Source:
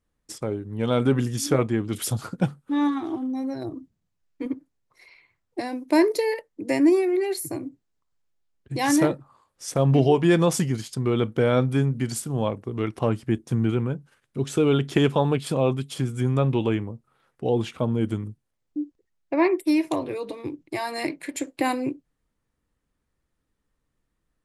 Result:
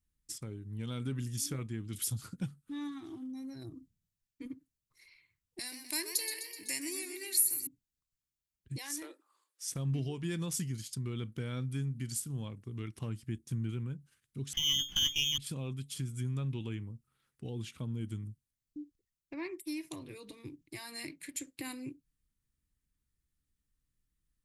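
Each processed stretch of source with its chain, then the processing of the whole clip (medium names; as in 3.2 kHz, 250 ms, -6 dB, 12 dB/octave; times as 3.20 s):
5.59–7.67 s: tilt EQ +4.5 dB/octave + modulated delay 126 ms, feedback 54%, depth 106 cents, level -10 dB
8.78–9.66 s: steep high-pass 320 Hz 48 dB/octave + compression 2:1, threshold -28 dBFS
14.53–15.38 s: doubling 14 ms -3 dB + frequency inversion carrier 3.4 kHz + sliding maximum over 3 samples
whole clip: treble shelf 7.6 kHz +8 dB; compression 1.5:1, threshold -31 dBFS; amplifier tone stack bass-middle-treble 6-0-2; trim +8 dB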